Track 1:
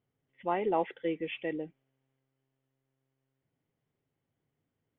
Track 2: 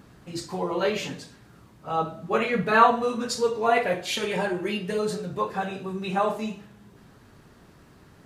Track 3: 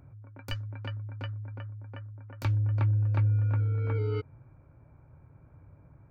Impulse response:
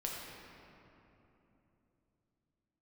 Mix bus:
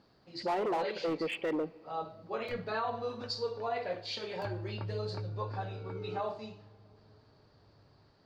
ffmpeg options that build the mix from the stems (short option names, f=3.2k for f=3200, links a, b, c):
-filter_complex "[0:a]volume=35dB,asoftclip=hard,volume=-35dB,volume=0.5dB,asplit=2[a][b];[b]volume=-23.5dB[c];[1:a]lowpass=f=4.6k:t=q:w=8,volume=-20dB,asplit=2[d][e];[e]volume=-23.5dB[f];[2:a]adelay=2000,volume=-16dB,asplit=2[g][h];[h]volume=-12.5dB[i];[3:a]atrim=start_sample=2205[j];[c][f][i]amix=inputs=3:normalize=0[k];[k][j]afir=irnorm=-1:irlink=0[l];[a][d][g][l]amix=inputs=4:normalize=0,equalizer=f=640:t=o:w=2.3:g=10,alimiter=level_in=1.5dB:limit=-24dB:level=0:latency=1:release=56,volume=-1.5dB"